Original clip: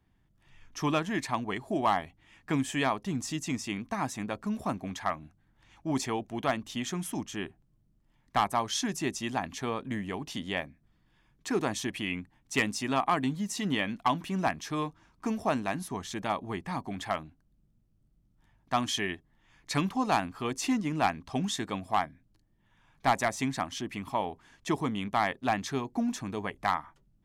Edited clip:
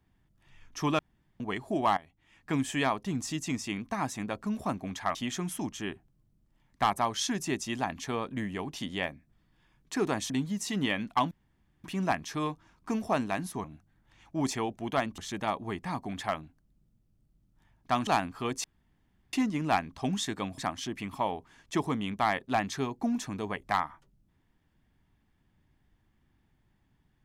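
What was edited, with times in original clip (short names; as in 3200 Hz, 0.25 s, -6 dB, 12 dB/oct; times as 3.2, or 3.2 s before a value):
0.99–1.4 room tone
1.97–2.62 fade in, from -16.5 dB
5.15–6.69 move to 16
11.84–13.19 cut
14.2 insert room tone 0.53 s
18.89–20.07 cut
20.64 insert room tone 0.69 s
21.89–23.52 cut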